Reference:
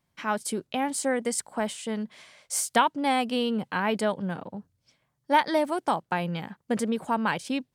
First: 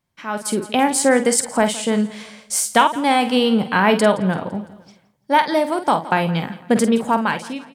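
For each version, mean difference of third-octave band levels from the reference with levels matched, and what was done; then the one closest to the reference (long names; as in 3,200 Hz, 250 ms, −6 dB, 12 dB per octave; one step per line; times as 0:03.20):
4.5 dB: fade-out on the ending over 0.93 s
double-tracking delay 48 ms −10 dB
repeating echo 169 ms, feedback 48%, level −19 dB
automatic gain control gain up to 14.5 dB
level −1 dB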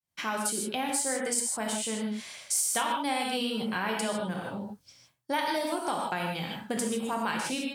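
9.0 dB: high-shelf EQ 3,300 Hz +11.5 dB
reverb whose tail is shaped and stops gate 180 ms flat, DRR −0.5 dB
downward compressor 2.5 to 1, threshold −31 dBFS, peak gain reduction 12 dB
downward expander −59 dBFS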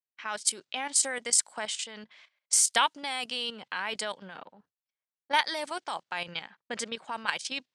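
6.5 dB: noise gate −48 dBFS, range −24 dB
meter weighting curve ITU-R 468
low-pass that shuts in the quiet parts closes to 2,000 Hz, open at −20 dBFS
output level in coarse steps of 11 dB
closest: first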